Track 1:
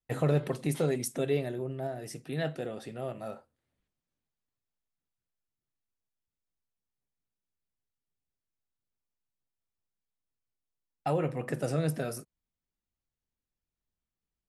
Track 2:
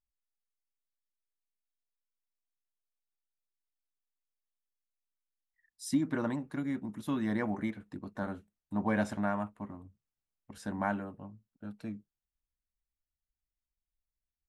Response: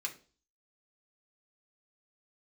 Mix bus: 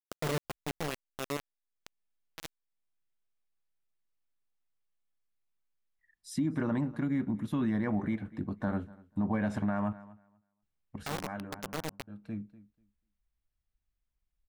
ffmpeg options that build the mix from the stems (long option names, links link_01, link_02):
-filter_complex "[0:a]lowpass=6400,acrusher=bits=3:mix=0:aa=0.000001,volume=-8.5dB,asplit=2[link_01][link_02];[1:a]bass=frequency=250:gain=7,treble=frequency=4000:gain=-8,adelay=450,volume=3dB,asplit=3[link_03][link_04][link_05];[link_03]atrim=end=9.93,asetpts=PTS-STARTPTS,afade=type=out:start_time=9.926:duration=0.004:curve=hsin[link_06];[link_04]atrim=start=9.93:end=10.62,asetpts=PTS-STARTPTS,volume=0[link_07];[link_05]atrim=start=10.62,asetpts=PTS-STARTPTS,afade=type=in:duration=0.004:curve=hsin[link_08];[link_06][link_07][link_08]concat=n=3:v=0:a=1,asplit=3[link_09][link_10][link_11];[link_10]volume=-19dB[link_12];[link_11]volume=-23.5dB[link_13];[link_02]apad=whole_len=658681[link_14];[link_09][link_14]sidechaincompress=threshold=-46dB:ratio=5:attack=16:release=526[link_15];[2:a]atrim=start_sample=2205[link_16];[link_12][link_16]afir=irnorm=-1:irlink=0[link_17];[link_13]aecho=0:1:244|488|732:1|0.16|0.0256[link_18];[link_01][link_15][link_17][link_18]amix=inputs=4:normalize=0,alimiter=limit=-22.5dB:level=0:latency=1:release=86"